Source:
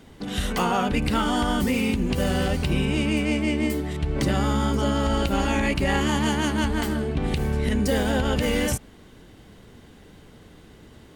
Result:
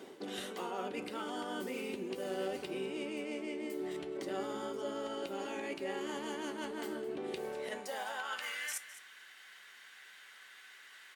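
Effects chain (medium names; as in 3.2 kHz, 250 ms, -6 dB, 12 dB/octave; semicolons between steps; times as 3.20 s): high-pass sweep 380 Hz -> 1.7 kHz, 7.28–8.67 s; reverse; compression 6:1, threshold -37 dBFS, peak gain reduction 18.5 dB; reverse; feedback comb 190 Hz, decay 0.22 s, harmonics all, mix 60%; delay 209 ms -15 dB; trim +4.5 dB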